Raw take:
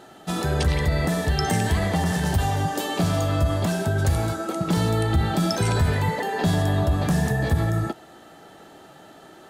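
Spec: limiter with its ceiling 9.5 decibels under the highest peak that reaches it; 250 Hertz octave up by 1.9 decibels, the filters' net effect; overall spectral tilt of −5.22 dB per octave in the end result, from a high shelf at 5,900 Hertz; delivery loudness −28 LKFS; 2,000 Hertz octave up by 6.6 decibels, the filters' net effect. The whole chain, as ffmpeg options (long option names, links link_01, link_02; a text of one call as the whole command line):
ffmpeg -i in.wav -af "equalizer=frequency=250:width_type=o:gain=3,equalizer=frequency=2000:width_type=o:gain=8.5,highshelf=frequency=5900:gain=-7,volume=-1dB,alimiter=limit=-19.5dB:level=0:latency=1" out.wav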